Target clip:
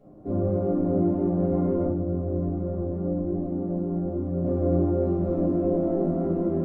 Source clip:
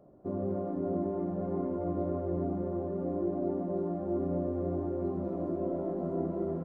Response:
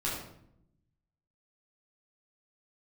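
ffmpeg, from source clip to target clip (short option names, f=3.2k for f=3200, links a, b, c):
-filter_complex "[0:a]equalizer=f=620:w=3.2:g=-5.5,asettb=1/sr,asplit=3[a][b][c];[a]atrim=end=1.854[d];[b]atrim=start=1.85:end=4.44,asetpts=PTS-STARTPTS,afade=t=in:d=0.004:c=qsin,afade=t=out:st=2.586:d=0.004:c=qsin,acrossover=split=220|750[e][f][g];[e]acompressor=threshold=-39dB:ratio=4[h];[f]acompressor=threshold=-41dB:ratio=4[i];[g]acompressor=threshold=-59dB:ratio=4[j];[h][i][j]amix=inputs=3:normalize=0[k];[c]atrim=start=4.436[l];[d][k]acrossfade=d=0.004:c1=hsin:c2=qsin[m];[m][l]acrossfade=d=0.004:c1=qsin:c2=hsin[n];[1:a]atrim=start_sample=2205,asetrate=88200,aresample=44100[o];[n][o]afir=irnorm=-1:irlink=0,volume=6.5dB"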